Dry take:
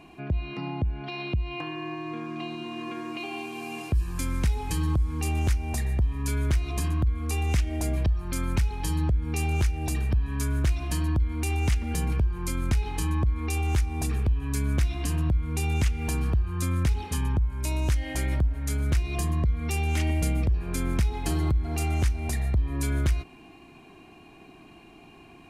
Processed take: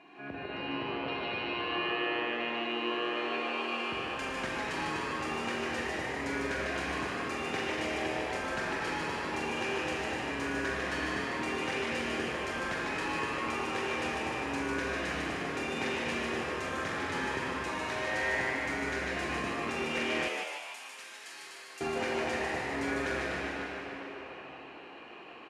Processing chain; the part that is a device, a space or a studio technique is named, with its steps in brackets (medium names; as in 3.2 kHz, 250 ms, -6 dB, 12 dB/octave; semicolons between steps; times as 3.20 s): station announcement (band-pass 330–4500 Hz; peaking EQ 1.7 kHz +9 dB 0.45 oct; loudspeakers at several distances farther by 15 m -5 dB, 85 m -5 dB; reverberation RT60 3.7 s, pre-delay 57 ms, DRR -3 dB); 20.28–21.81 s: differentiator; frequency-shifting echo 150 ms, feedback 58%, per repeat +120 Hz, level -4 dB; trim -5.5 dB